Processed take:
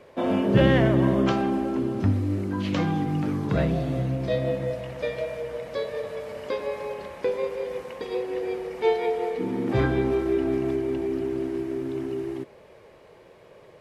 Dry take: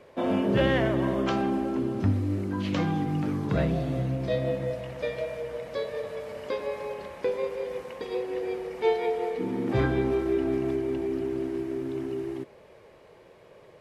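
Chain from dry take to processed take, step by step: 0.54–1.32 bell 150 Hz +6.5 dB 2 oct; gain +2 dB

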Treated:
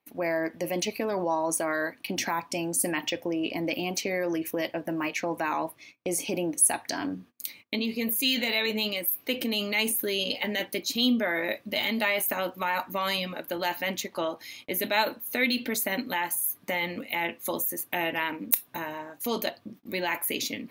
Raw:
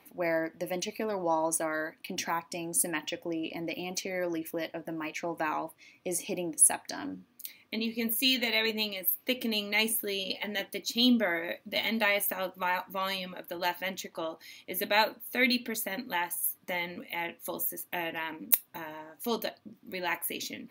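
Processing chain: gate -54 dBFS, range -26 dB; in parallel at -3 dB: negative-ratio compressor -34 dBFS, ratio -0.5

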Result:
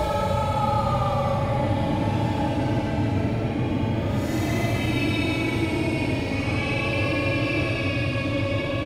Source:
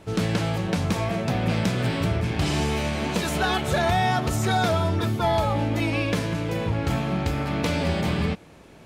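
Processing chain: crackle 42/s -43 dBFS; Paulstretch 13×, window 0.05 s, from 5.43; on a send: frequency-shifting echo 0.191 s, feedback 58%, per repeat +54 Hz, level -15 dB

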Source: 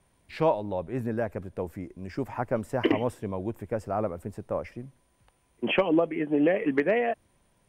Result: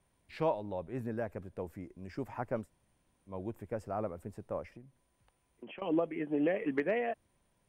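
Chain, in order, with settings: 2.65–3.31 room tone, crossfade 0.10 s; 4.64–5.82 compressor 5:1, threshold -41 dBFS, peak gain reduction 20.5 dB; gain -7.5 dB

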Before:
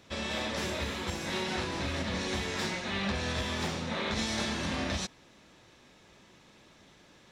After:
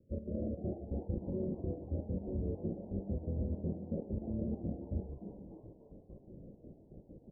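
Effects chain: steep low-pass 590 Hz 96 dB/oct; low shelf 150 Hz +11 dB; de-hum 71.28 Hz, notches 2; reverse; compressor 6:1, threshold -39 dBFS, peak gain reduction 14 dB; reverse; step gate ".x.xxx.x..x" 165 bpm -12 dB; on a send: frequency-shifting echo 0.297 s, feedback 38%, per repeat +120 Hz, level -11 dB; on the sum: gain +5.5 dB

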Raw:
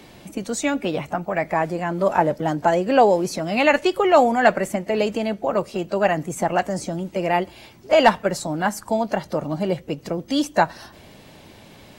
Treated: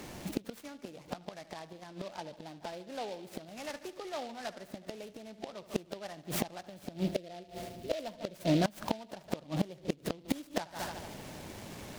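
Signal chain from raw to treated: spectral gain 7.04–8.73, 730–4400 Hz -12 dB; on a send: dark delay 73 ms, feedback 64%, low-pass 3500 Hz, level -16 dB; on the sum: flipped gate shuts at -17 dBFS, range -25 dB; noise-modulated delay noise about 3100 Hz, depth 0.065 ms

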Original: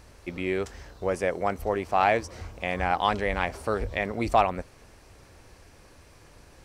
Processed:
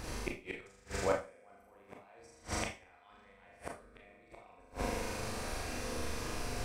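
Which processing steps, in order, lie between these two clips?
harmonic-percussive split percussive +8 dB; dynamic EQ 8200 Hz, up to +8 dB, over -58 dBFS, Q 4.4; reverse; compressor 16:1, threshold -30 dBFS, peak gain reduction 22 dB; reverse; flutter echo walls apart 7 m, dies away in 1.2 s; flipped gate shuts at -23 dBFS, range -34 dB; Schroeder reverb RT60 0.3 s, combs from 25 ms, DRR 1.5 dB; gain +3 dB

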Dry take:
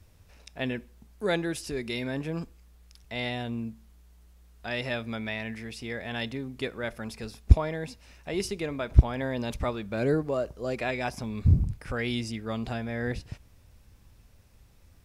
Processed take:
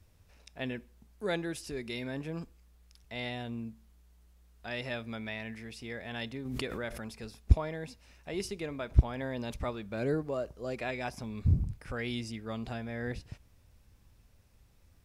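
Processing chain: 6.45–7.18 backwards sustainer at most 26 dB/s; gain -5.5 dB

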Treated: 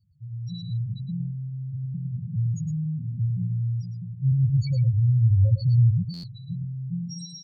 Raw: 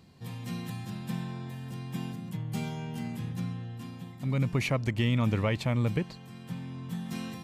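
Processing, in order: resonant high shelf 3200 Hz +14 dB, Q 1.5; limiter -21 dBFS, peak gain reduction 8.5 dB; AGC gain up to 10 dB; comb 1.8 ms, depth 86%; sample leveller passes 1; echo with dull and thin repeats by turns 0.123 s, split 1700 Hz, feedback 55%, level -12.5 dB; loudest bins only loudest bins 2; passive tone stack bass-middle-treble 10-0-1; echo 0.11 s -8.5 dB; stuck buffer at 6.13, samples 512, times 8; gain +8.5 dB; AAC 160 kbps 48000 Hz

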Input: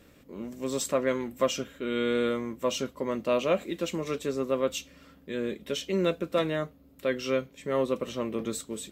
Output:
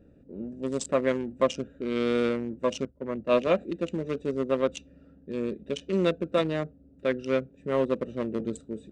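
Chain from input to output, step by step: Wiener smoothing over 41 samples; downsampling 22050 Hz; 2.85–3.47 three-band expander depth 100%; gain +2.5 dB

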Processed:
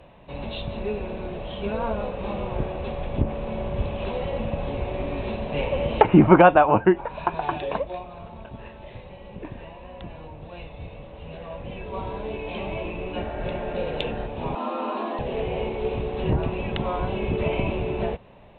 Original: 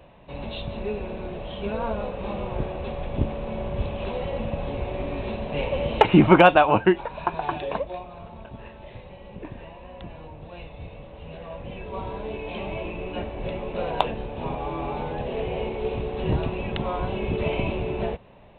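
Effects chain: 13.26–14.24 spectral repair 560–2000 Hz before; 14.55–15.19 frequency shift +190 Hz; treble ducked by the level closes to 1700 Hz, closed at -18 dBFS; gain +1 dB

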